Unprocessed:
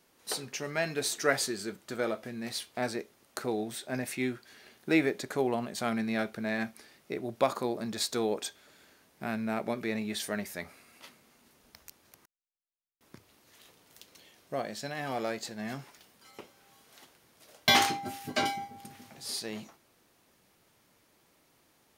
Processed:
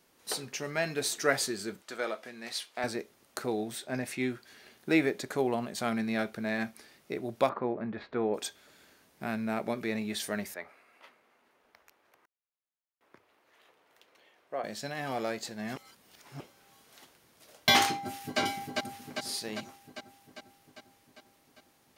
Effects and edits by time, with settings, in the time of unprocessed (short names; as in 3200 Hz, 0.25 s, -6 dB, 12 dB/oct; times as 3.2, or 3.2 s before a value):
1.82–2.84 weighting filter A
3.84–4.3 high shelf 11000 Hz -8 dB
7.49–8.34 LPF 2200 Hz 24 dB/oct
10.54–14.64 three-band isolator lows -17 dB, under 360 Hz, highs -16 dB, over 2700 Hz
15.76–16.4 reverse
17.97–18.4 echo throw 0.4 s, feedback 65%, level -3 dB